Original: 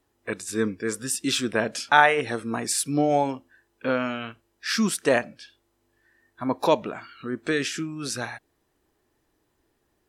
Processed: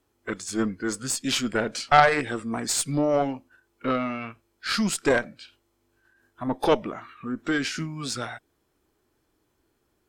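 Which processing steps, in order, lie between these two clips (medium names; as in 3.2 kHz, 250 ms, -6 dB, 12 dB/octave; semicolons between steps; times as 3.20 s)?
formant shift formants -2 st; Chebyshev shaper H 4 -14 dB, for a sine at -3 dBFS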